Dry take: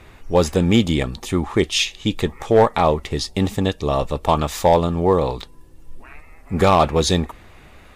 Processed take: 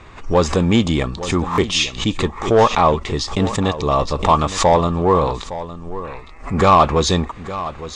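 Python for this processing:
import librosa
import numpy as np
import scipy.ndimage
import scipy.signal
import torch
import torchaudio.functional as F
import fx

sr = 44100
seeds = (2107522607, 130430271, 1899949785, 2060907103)

p1 = 10.0 ** (-17.0 / 20.0) * np.tanh(x / 10.0 ** (-17.0 / 20.0))
p2 = x + F.gain(torch.from_numpy(p1), -4.0).numpy()
p3 = scipy.signal.sosfilt(scipy.signal.butter(6, 8100.0, 'lowpass', fs=sr, output='sos'), p2)
p4 = fx.peak_eq(p3, sr, hz=1100.0, db=8.0, octaves=0.39)
p5 = p4 + fx.echo_single(p4, sr, ms=862, db=-14.0, dry=0)
p6 = fx.buffer_glitch(p5, sr, at_s=(1.51,), block=1024, repeats=2)
p7 = fx.pre_swell(p6, sr, db_per_s=130.0)
y = F.gain(torch.from_numpy(p7), -2.0).numpy()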